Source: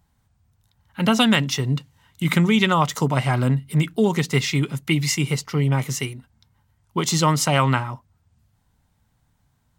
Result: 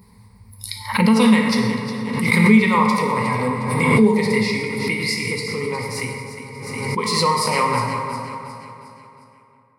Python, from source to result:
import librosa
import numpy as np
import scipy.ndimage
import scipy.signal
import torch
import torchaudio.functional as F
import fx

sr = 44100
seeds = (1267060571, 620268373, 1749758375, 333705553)

p1 = scipy.signal.sosfilt(scipy.signal.butter(2, 45.0, 'highpass', fs=sr, output='sos'), x)
p2 = fx.noise_reduce_blind(p1, sr, reduce_db=24)
p3 = fx.ripple_eq(p2, sr, per_octave=0.91, db=17)
p4 = p3 + fx.echo_feedback(p3, sr, ms=360, feedback_pct=46, wet_db=-11, dry=0)
p5 = fx.rev_plate(p4, sr, seeds[0], rt60_s=2.4, hf_ratio=0.45, predelay_ms=0, drr_db=-0.5)
p6 = fx.pre_swell(p5, sr, db_per_s=33.0)
y = p6 * 10.0 ** (-5.5 / 20.0)